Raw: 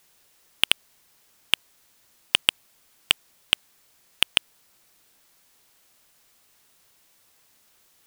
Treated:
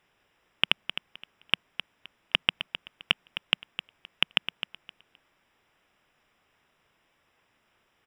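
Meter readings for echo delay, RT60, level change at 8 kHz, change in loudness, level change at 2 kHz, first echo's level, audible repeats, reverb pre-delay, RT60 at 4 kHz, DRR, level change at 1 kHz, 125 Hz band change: 260 ms, no reverb audible, −20.5 dB, −5.5 dB, −2.0 dB, −10.5 dB, 2, no reverb audible, no reverb audible, no reverb audible, −1.0 dB, +2.0 dB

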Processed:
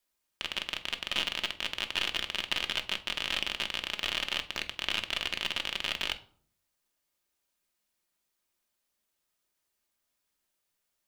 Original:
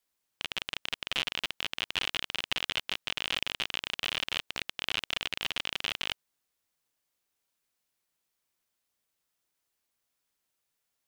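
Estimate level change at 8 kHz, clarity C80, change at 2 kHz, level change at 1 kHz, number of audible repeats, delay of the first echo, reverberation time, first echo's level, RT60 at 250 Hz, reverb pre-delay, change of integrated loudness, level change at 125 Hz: +0.5 dB, 20.5 dB, +1.0 dB, +1.0 dB, no echo audible, no echo audible, 0.55 s, no echo audible, 0.75 s, 3 ms, +1.0 dB, −0.5 dB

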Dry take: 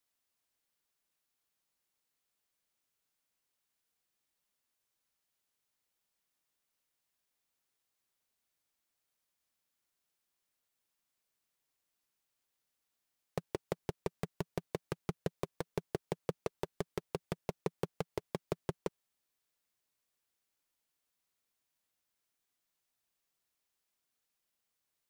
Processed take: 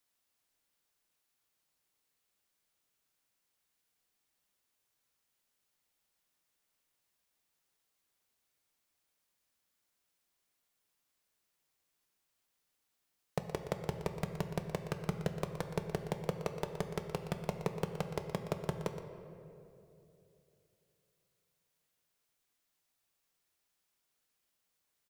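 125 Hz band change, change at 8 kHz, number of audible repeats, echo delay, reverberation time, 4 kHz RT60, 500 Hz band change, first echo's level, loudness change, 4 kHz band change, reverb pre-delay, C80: +4.5 dB, +3.0 dB, 1, 120 ms, 2.9 s, 1.4 s, +1.0 dB, −12.0 dB, +2.5 dB, +3.0 dB, 7 ms, 7.5 dB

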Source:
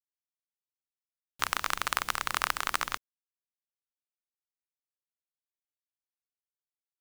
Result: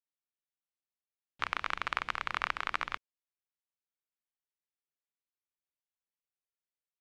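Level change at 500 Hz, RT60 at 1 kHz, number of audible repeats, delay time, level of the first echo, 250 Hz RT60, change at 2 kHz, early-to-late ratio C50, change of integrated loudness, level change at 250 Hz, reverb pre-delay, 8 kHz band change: −4.0 dB, no reverb audible, no echo audible, no echo audible, no echo audible, no reverb audible, −2.5 dB, no reverb audible, −4.0 dB, −4.0 dB, no reverb audible, −20.0 dB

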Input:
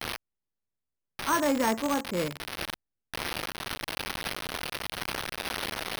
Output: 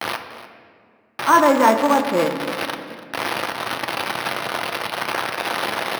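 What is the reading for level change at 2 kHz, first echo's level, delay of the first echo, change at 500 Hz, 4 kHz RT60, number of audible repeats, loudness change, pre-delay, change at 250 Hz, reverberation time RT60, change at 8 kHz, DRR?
+10.5 dB, −16.5 dB, 292 ms, +12.5 dB, 1.2 s, 1, +10.5 dB, 3 ms, +8.5 dB, 2.2 s, +4.0 dB, 4.5 dB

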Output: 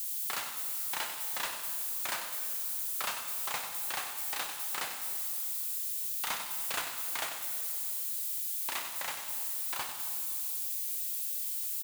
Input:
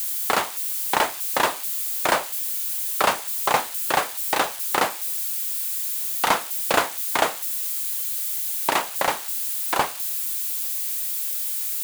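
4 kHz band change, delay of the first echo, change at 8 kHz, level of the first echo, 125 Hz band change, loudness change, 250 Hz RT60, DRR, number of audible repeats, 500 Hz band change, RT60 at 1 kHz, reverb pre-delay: −10.0 dB, 95 ms, −8.5 dB, −9.5 dB, below −15 dB, −10.0 dB, 3.4 s, 4.0 dB, 1, −21.5 dB, 2.5 s, 17 ms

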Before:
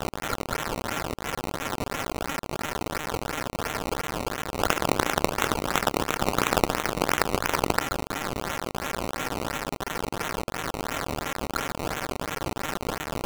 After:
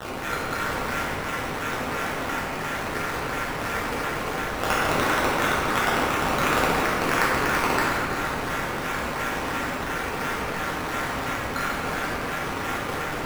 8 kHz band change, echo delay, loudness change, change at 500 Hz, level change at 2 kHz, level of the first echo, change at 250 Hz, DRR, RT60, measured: −1.0 dB, no echo audible, +3.0 dB, +1.5 dB, +6.0 dB, no echo audible, +2.0 dB, −7.5 dB, 2.2 s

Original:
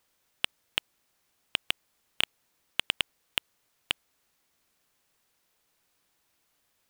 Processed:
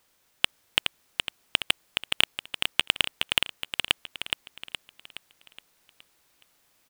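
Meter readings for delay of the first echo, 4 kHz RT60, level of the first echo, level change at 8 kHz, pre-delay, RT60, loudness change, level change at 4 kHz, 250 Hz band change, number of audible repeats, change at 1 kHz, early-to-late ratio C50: 419 ms, no reverb audible, −5.0 dB, +7.0 dB, no reverb audible, no reverb audible, +5.5 dB, +7.0 dB, +7.0 dB, 5, +7.0 dB, no reverb audible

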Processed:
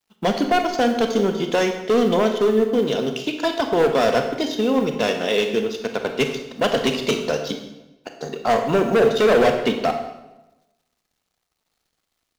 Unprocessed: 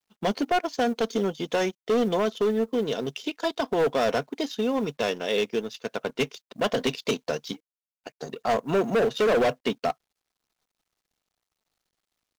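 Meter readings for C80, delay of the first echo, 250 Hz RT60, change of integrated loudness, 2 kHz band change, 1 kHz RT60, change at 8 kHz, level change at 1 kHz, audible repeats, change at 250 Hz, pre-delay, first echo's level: 9.0 dB, no echo audible, 1.1 s, +6.0 dB, +6.0 dB, 0.95 s, +6.0 dB, +6.0 dB, no echo audible, +6.5 dB, 26 ms, no echo audible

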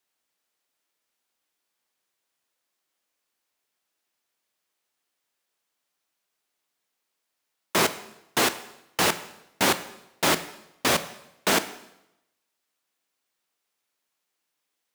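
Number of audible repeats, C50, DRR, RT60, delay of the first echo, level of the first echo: no echo audible, 14.0 dB, 11.5 dB, 0.85 s, no echo audible, no echo audible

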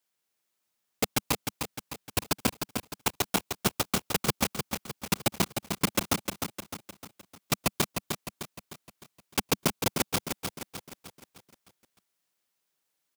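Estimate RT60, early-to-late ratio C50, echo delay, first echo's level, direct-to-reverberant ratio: no reverb audible, no reverb audible, 305 ms, −6.0 dB, no reverb audible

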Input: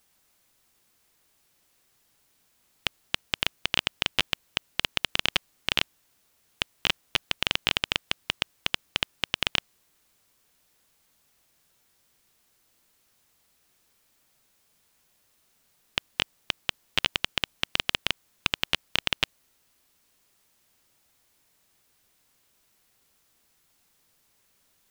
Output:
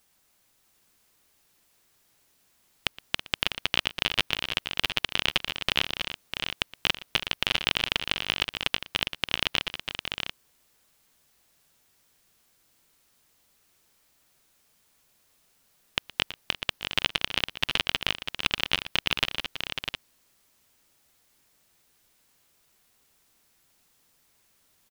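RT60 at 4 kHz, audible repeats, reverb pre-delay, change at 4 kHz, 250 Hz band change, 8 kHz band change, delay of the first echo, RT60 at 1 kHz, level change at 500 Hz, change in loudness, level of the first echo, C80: no reverb audible, 4, no reverb audible, +1.0 dB, +1.0 dB, −1.0 dB, 118 ms, no reverb audible, +1.5 dB, +0.5 dB, −19.5 dB, no reverb audible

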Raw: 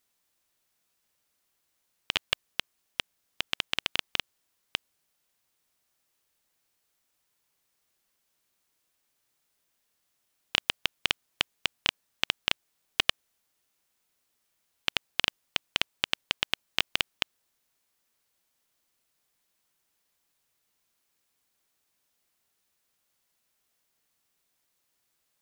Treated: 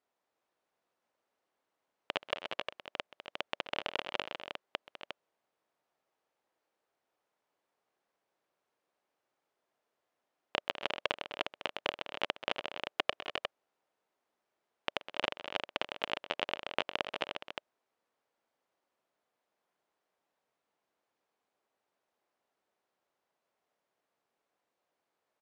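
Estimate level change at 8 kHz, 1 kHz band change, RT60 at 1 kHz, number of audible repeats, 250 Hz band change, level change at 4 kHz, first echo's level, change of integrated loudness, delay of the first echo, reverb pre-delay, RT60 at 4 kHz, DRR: −16.5 dB, +2.0 dB, no reverb audible, 4, −1.0 dB, −9.5 dB, −18.5 dB, −7.0 dB, 129 ms, no reverb audible, no reverb audible, no reverb audible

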